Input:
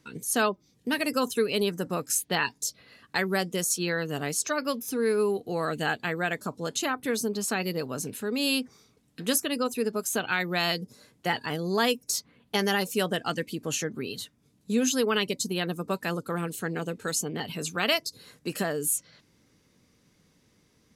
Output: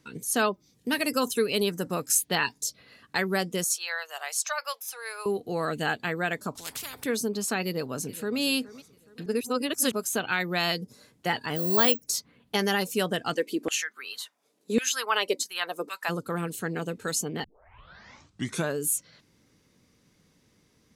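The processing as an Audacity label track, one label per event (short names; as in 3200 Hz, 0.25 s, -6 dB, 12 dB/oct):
0.480000	2.610000	high shelf 4600 Hz +4.5 dB
3.640000	5.260000	steep high-pass 660 Hz
6.550000	7.040000	spectral compressor 10:1
7.660000	8.390000	echo throw 0.42 s, feedback 40%, level -17.5 dB
9.260000	9.920000	reverse
11.560000	12.060000	careless resampling rate divided by 2×, down filtered, up zero stuff
13.330000	16.080000	LFO high-pass saw down 0.51 Hz -> 2.8 Hz 290–2200 Hz
17.440000	17.440000	tape start 1.36 s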